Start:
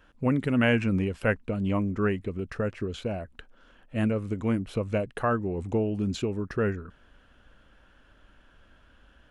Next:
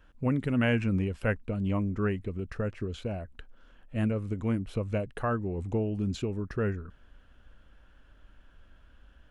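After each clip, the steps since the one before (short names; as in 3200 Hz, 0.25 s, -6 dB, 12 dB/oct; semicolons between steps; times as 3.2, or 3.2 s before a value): low shelf 99 Hz +9.5 dB; gain -4.5 dB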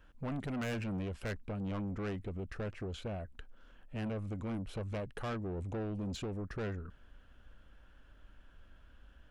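soft clip -32.5 dBFS, distortion -7 dB; gain -2 dB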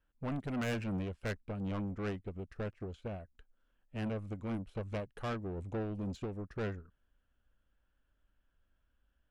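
upward expander 2.5:1, over -49 dBFS; gain +2.5 dB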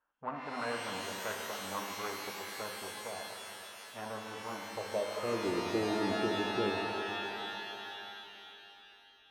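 band-pass sweep 1000 Hz -> 340 Hz, 4.6–5.43; shimmer reverb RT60 3 s, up +12 st, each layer -2 dB, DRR 1 dB; gain +8.5 dB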